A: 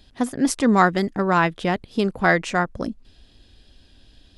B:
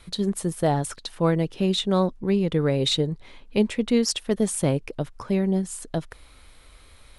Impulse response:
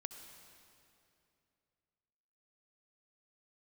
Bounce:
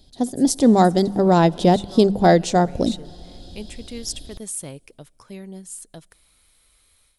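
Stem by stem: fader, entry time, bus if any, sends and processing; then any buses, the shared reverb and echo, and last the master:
−0.5 dB, 0.00 s, send −13 dB, flat-topped bell 1,700 Hz −15 dB; mains-hum notches 50/100/150/200 Hz
−13.0 dB, 0.00 s, send −24 dB, first-order pre-emphasis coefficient 0.8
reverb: on, RT60 2.7 s, pre-delay 59 ms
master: automatic gain control gain up to 12 dB

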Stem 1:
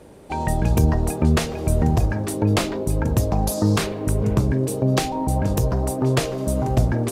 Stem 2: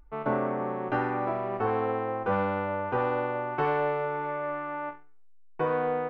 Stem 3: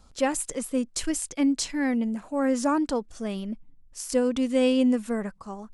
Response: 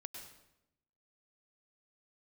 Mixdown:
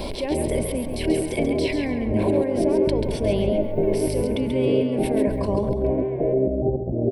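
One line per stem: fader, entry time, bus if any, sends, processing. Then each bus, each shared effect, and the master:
−4.5 dB, 0.00 s, no send, echo send −9 dB, Butterworth low-pass 770 Hz 72 dB per octave; compressor whose output falls as the input rises −23 dBFS, ratio −0.5
−6.0 dB, 0.25 s, no send, echo send −8.5 dB, Bessel high-pass filter 680 Hz; brickwall limiter −28 dBFS, peak gain reduction 9 dB; pitch vibrato 4 Hz 79 cents
−8.5 dB, 0.00 s, no send, echo send −6.5 dB, low-shelf EQ 200 Hz −10 dB; envelope flattener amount 100%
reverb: not used
echo: repeating echo 136 ms, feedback 26%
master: parametric band 510 Hz −2 dB 0.25 octaves; phaser with its sweep stopped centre 3,000 Hz, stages 4; hollow resonant body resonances 390/580/1,000/2,200 Hz, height 12 dB, ringing for 25 ms

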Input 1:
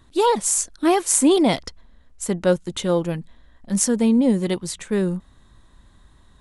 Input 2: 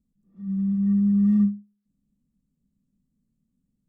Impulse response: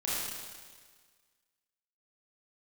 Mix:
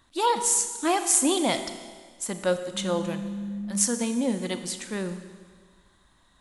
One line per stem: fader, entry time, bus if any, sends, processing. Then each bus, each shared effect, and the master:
−3.5 dB, 0.00 s, send −13.5 dB, low-shelf EQ 290 Hz −12 dB
−2.5 dB, 2.35 s, no send, downward compressor, threshold −30 dBFS, peak gain reduction 12.5 dB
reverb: on, RT60 1.6 s, pre-delay 26 ms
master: parametric band 420 Hz −7.5 dB 0.27 octaves

